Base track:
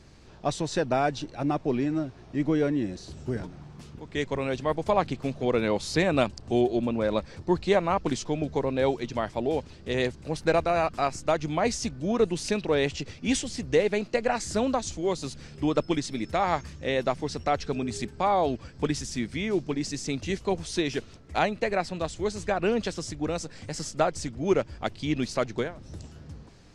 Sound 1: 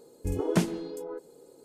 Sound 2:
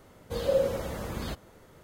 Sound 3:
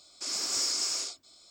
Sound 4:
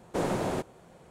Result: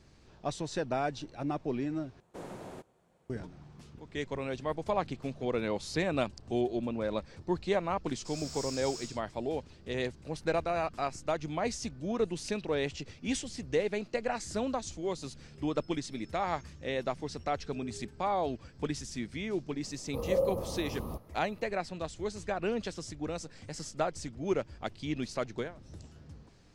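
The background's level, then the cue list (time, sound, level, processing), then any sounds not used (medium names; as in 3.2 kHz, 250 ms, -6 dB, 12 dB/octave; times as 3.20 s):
base track -7 dB
2.20 s: replace with 4 -15 dB
8.04 s: add 3 -12.5 dB
19.83 s: add 2 -3.5 dB + brick-wall FIR band-stop 1.3–9.2 kHz
not used: 1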